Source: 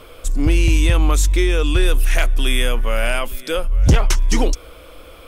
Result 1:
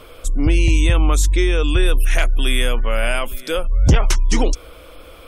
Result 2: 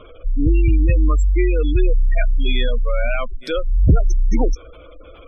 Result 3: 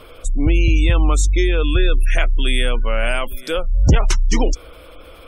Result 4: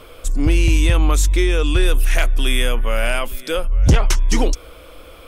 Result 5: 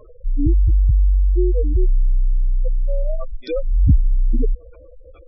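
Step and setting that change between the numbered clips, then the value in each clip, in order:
spectral gate, under each frame's peak: -45, -20, -35, -60, -10 dB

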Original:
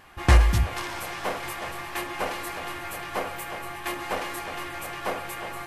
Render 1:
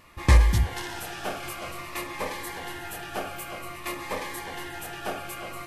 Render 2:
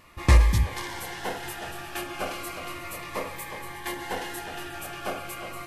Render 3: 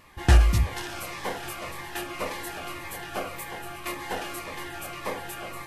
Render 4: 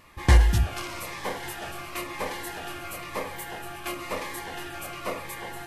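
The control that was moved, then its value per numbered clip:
cascading phaser, rate: 0.52, 0.34, 1.8, 0.98 Hz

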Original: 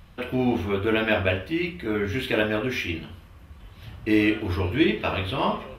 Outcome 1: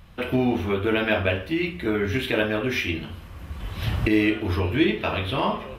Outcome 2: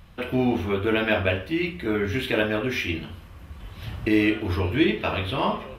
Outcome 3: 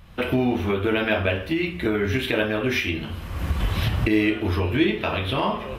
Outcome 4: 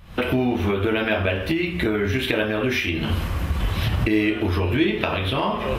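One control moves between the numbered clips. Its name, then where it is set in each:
recorder AGC, rising by: 14, 5, 36, 88 dB/s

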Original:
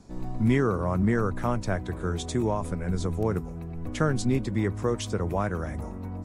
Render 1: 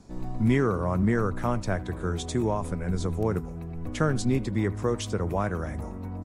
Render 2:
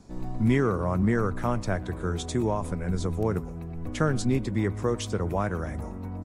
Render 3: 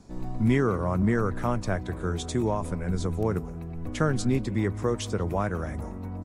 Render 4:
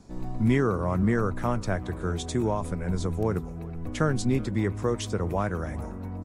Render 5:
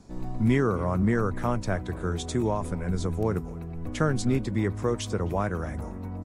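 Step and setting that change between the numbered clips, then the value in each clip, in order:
speakerphone echo, time: 80, 120, 180, 380, 260 ms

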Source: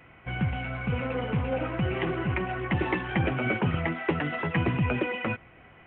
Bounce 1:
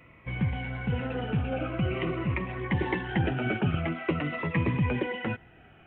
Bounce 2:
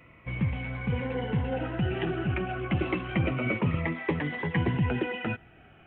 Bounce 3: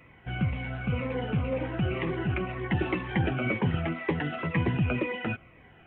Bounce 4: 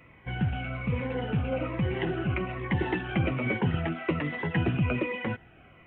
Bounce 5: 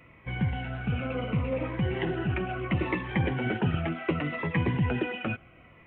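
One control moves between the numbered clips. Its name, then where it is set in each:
cascading phaser, rate: 0.46, 0.29, 2, 1.2, 0.7 Hz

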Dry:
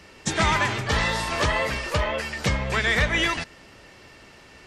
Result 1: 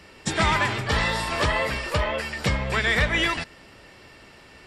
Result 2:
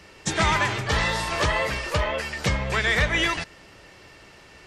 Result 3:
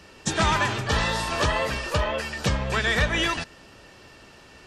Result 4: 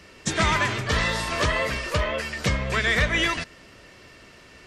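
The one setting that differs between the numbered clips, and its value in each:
notch, frequency: 6300, 240, 2100, 840 Hz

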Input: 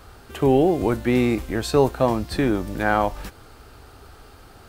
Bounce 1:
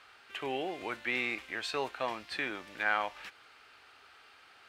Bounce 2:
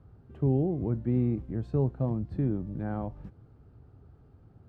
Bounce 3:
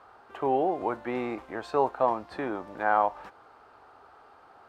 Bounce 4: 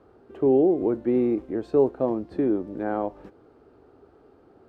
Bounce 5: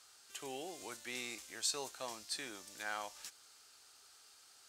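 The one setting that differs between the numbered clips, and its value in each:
band-pass, frequency: 2400, 130, 920, 360, 6800 Hz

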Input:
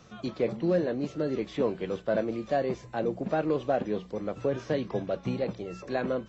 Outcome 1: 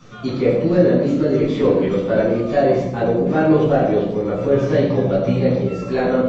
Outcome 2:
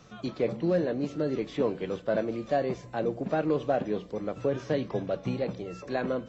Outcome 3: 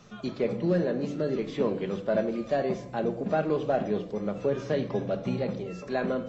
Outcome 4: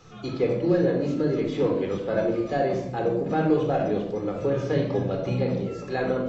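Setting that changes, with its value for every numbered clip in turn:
shoebox room, microphone at: 12, 0.36, 1.3, 4 m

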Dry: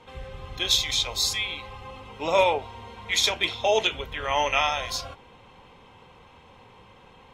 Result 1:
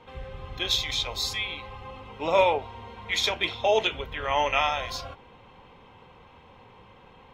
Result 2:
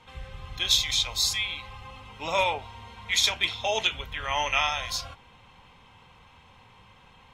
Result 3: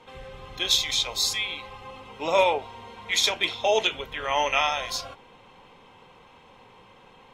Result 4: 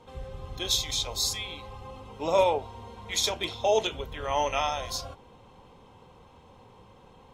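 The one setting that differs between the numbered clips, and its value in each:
bell, frequency: 9000, 410, 64, 2200 Hz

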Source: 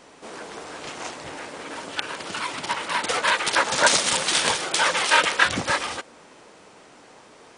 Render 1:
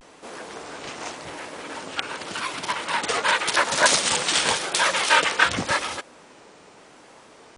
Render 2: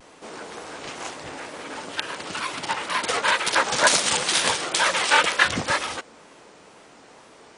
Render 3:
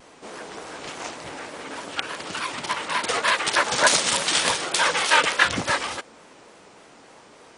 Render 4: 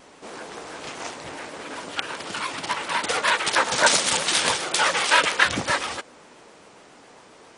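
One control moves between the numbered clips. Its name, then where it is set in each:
vibrato, rate: 0.88, 2.1, 3.4, 7.4 Hz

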